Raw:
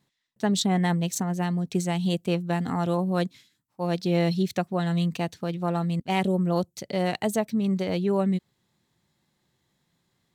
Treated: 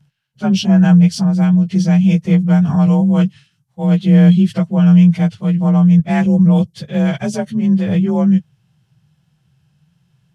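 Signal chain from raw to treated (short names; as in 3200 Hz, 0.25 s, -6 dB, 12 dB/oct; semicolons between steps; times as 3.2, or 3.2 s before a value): inharmonic rescaling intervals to 91%; resonant low shelf 200 Hz +10.5 dB, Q 3; gain +7 dB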